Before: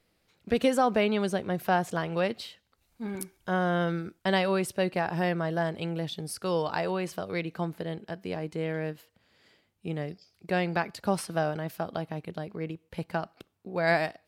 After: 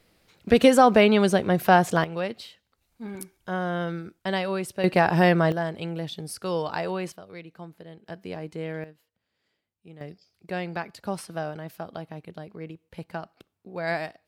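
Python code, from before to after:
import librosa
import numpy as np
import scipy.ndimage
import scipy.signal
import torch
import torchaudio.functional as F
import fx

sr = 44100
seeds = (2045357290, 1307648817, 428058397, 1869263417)

y = fx.gain(x, sr, db=fx.steps((0.0, 8.0), (2.04, -1.5), (4.84, 9.0), (5.52, 0.5), (7.12, -10.0), (8.06, -1.5), (8.84, -13.5), (10.01, -3.5)))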